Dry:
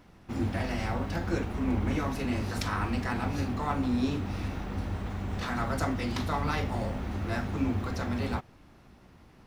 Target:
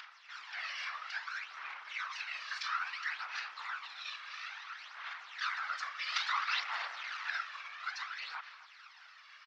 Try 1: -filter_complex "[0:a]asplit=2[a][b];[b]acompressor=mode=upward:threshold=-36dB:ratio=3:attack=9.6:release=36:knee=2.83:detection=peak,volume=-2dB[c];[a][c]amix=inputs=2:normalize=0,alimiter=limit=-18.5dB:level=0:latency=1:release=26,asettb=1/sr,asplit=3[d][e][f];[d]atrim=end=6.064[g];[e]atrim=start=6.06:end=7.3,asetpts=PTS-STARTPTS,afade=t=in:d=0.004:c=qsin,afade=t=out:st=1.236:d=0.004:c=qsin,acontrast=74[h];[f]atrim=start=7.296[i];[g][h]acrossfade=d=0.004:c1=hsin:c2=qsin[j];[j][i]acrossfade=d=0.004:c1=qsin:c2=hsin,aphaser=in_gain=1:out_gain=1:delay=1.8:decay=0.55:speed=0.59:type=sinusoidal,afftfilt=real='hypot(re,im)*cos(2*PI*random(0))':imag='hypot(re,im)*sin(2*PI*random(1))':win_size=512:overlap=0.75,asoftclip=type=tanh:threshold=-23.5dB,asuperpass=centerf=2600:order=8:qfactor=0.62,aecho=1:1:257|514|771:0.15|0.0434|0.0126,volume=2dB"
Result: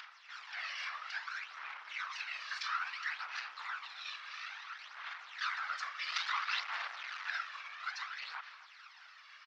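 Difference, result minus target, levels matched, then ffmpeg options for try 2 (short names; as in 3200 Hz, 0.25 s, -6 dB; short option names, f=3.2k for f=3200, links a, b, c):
soft clip: distortion +6 dB
-filter_complex "[0:a]asplit=2[a][b];[b]acompressor=mode=upward:threshold=-36dB:ratio=3:attack=9.6:release=36:knee=2.83:detection=peak,volume=-2dB[c];[a][c]amix=inputs=2:normalize=0,alimiter=limit=-18.5dB:level=0:latency=1:release=26,asettb=1/sr,asplit=3[d][e][f];[d]atrim=end=6.064[g];[e]atrim=start=6.06:end=7.3,asetpts=PTS-STARTPTS,afade=t=in:d=0.004:c=qsin,afade=t=out:st=1.236:d=0.004:c=qsin,acontrast=74[h];[f]atrim=start=7.296[i];[g][h]acrossfade=d=0.004:c1=hsin:c2=qsin[j];[j][i]acrossfade=d=0.004:c1=qsin:c2=hsin,aphaser=in_gain=1:out_gain=1:delay=1.8:decay=0.55:speed=0.59:type=sinusoidal,afftfilt=real='hypot(re,im)*cos(2*PI*random(0))':imag='hypot(re,im)*sin(2*PI*random(1))':win_size=512:overlap=0.75,asoftclip=type=tanh:threshold=-17dB,asuperpass=centerf=2600:order=8:qfactor=0.62,aecho=1:1:257|514|771:0.15|0.0434|0.0126,volume=2dB"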